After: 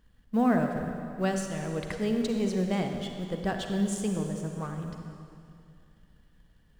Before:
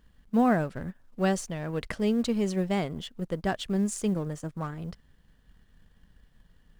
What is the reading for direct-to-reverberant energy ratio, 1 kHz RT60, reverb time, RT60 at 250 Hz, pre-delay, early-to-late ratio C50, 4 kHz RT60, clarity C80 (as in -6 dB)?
3.5 dB, 2.4 s, 2.4 s, 2.6 s, 37 ms, 4.0 dB, 2.2 s, 5.0 dB